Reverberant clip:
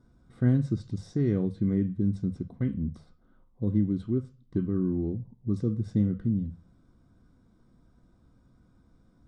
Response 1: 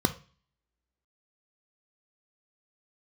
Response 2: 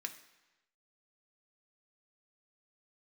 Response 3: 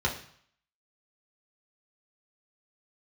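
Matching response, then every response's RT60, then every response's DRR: 1; no single decay rate, 1.1 s, 0.60 s; 8.5 dB, 4.5 dB, -3.0 dB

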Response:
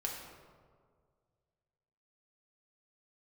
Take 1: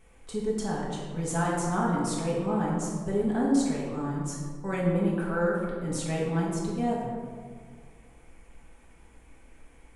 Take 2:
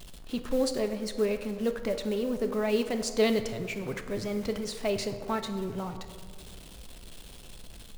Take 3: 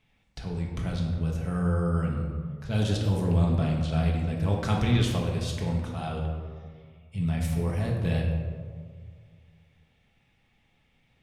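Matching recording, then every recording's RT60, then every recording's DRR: 3; 1.9 s, 1.9 s, 1.9 s; -6.5 dB, 6.5 dB, -1.5 dB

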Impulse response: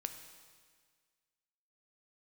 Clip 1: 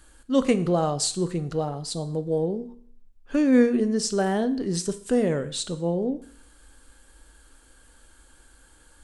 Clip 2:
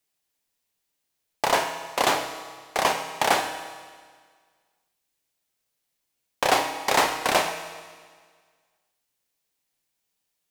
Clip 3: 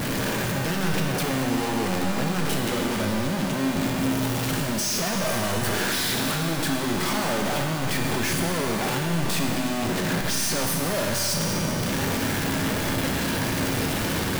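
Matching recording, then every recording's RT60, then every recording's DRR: 2; 0.55 s, 1.7 s, 2.8 s; 10.5 dB, 6.5 dB, 0.5 dB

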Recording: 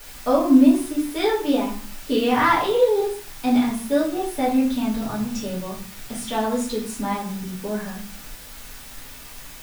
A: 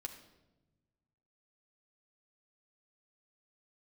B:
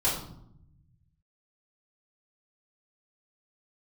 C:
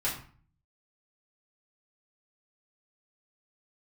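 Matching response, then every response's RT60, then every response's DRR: C; 1.1 s, 0.75 s, 0.45 s; 3.5 dB, -8.5 dB, -8.0 dB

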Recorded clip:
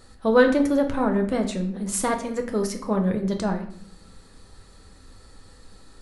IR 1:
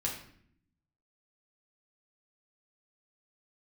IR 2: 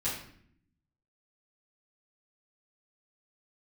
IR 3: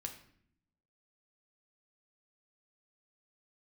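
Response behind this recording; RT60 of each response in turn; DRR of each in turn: 3; 0.60 s, 0.60 s, 0.65 s; -3.0 dB, -10.5 dB, 3.5 dB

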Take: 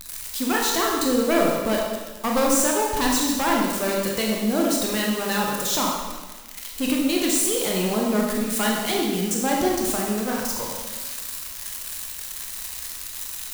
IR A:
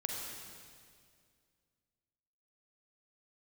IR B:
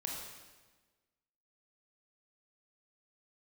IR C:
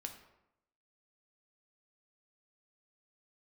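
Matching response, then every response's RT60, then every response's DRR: B; 2.1 s, 1.3 s, 0.85 s; -0.5 dB, -1.5 dB, 4.0 dB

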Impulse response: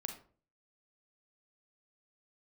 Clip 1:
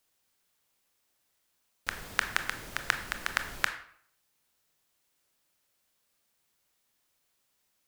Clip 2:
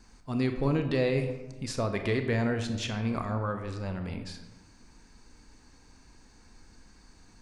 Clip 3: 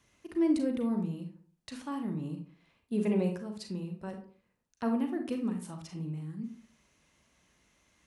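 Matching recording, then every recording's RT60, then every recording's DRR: 3; 0.60 s, 1.1 s, 0.45 s; 7.5 dB, 6.0 dB, 4.5 dB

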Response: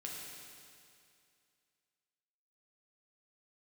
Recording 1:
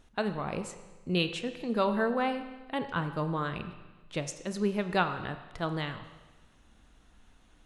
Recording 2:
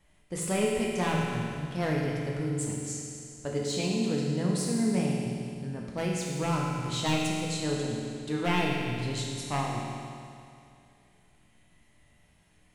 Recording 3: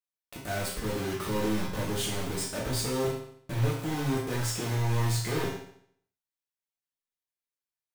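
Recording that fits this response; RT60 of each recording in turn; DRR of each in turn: 2; 1.2 s, 2.4 s, 0.65 s; 8.5 dB, -3.5 dB, -5.5 dB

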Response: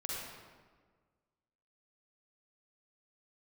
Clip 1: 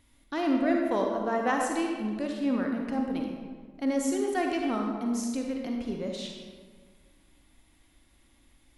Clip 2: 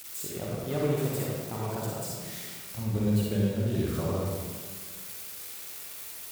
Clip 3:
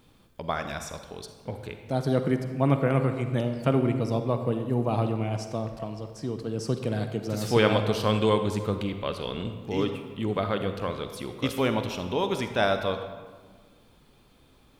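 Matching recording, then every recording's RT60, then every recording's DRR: 2; 1.6 s, 1.6 s, 1.5 s; 1.0 dB, -4.5 dB, 7.5 dB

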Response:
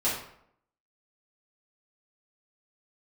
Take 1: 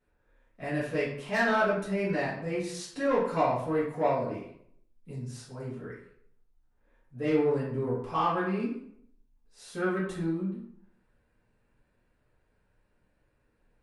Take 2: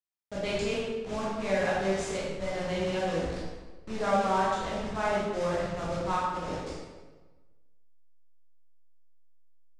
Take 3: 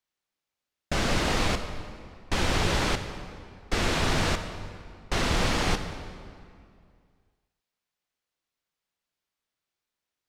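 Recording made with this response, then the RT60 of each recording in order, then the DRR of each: 1; 0.70 s, 1.3 s, 2.3 s; -10.5 dB, -7.5 dB, 7.5 dB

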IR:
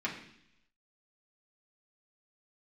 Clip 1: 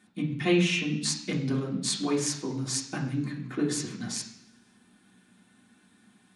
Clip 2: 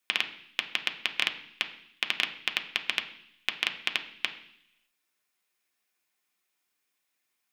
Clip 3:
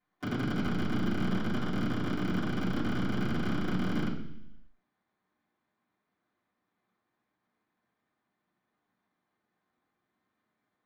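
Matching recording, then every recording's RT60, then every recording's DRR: 1; 0.70 s, 0.70 s, 0.70 s; -5.5 dB, 4.0 dB, -12.5 dB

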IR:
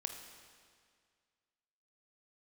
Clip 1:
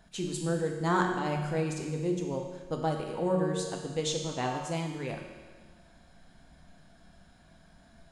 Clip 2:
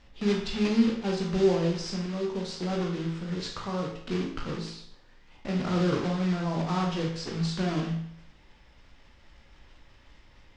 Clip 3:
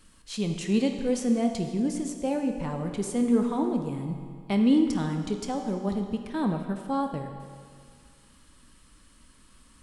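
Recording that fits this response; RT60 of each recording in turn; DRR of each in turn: 3; 1.5 s, 0.65 s, 2.0 s; 1.0 dB, -0.5 dB, 4.5 dB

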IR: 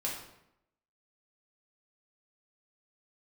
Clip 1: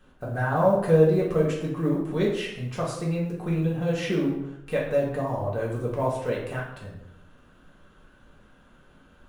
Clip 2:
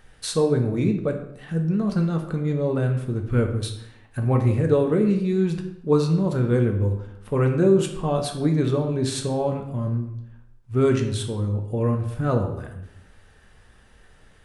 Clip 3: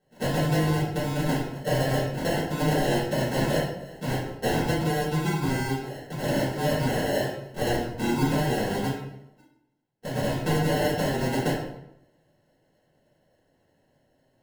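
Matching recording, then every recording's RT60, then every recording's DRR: 1; 0.80 s, 0.80 s, 0.80 s; -4.5 dB, 3.0 dB, -13.0 dB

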